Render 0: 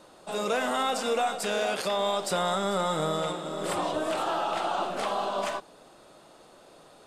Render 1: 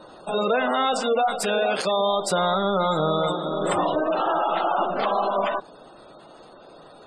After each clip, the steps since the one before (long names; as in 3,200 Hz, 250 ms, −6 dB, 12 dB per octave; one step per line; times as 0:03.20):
gate on every frequency bin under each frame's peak −20 dB strong
in parallel at +0.5 dB: speech leveller within 5 dB 0.5 s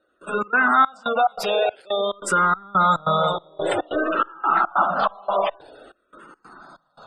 parametric band 1,400 Hz +10.5 dB 0.62 octaves
gate pattern "..xx.xxx" 142 BPM −24 dB
frequency shifter mixed with the dry sound −0.51 Hz
level +2.5 dB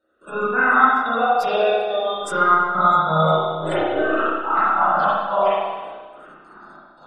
spring reverb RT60 1.4 s, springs 31/44 ms, chirp 65 ms, DRR −9 dB
level −7 dB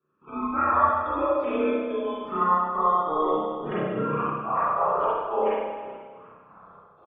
single-tap delay 430 ms −17 dB
single-sideband voice off tune −170 Hz 300–2,900 Hz
level −6 dB